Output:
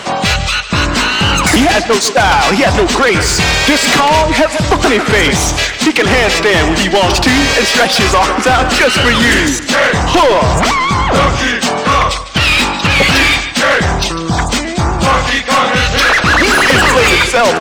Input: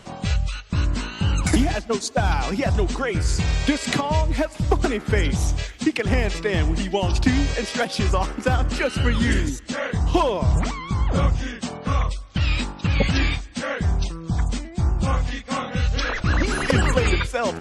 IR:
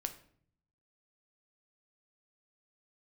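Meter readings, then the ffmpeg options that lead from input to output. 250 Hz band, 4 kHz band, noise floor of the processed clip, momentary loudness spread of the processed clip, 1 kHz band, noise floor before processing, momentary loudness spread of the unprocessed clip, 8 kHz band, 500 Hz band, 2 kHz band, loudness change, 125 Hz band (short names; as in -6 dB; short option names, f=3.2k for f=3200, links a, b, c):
+10.0 dB, +18.5 dB, -19 dBFS, 5 LU, +16.5 dB, -39 dBFS, 6 LU, +17.0 dB, +13.0 dB, +17.5 dB, +13.0 dB, +4.5 dB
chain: -filter_complex "[0:a]aecho=1:1:149:0.158,asplit=2[a][b];[b]highpass=f=720:p=1,volume=27dB,asoftclip=type=tanh:threshold=-5dB[c];[a][c]amix=inputs=2:normalize=0,lowpass=f=5.2k:p=1,volume=-6dB,volume=4dB"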